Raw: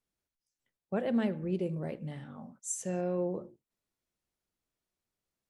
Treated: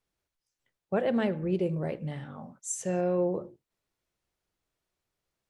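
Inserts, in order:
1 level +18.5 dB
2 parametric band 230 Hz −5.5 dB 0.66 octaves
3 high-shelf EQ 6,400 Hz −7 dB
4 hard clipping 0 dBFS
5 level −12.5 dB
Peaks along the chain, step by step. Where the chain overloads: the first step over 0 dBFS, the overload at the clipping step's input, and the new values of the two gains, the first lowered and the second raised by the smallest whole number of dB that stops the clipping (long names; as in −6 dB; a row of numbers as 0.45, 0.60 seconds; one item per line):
−1.5, −3.5, −3.5, −3.5, −16.0 dBFS
no step passes full scale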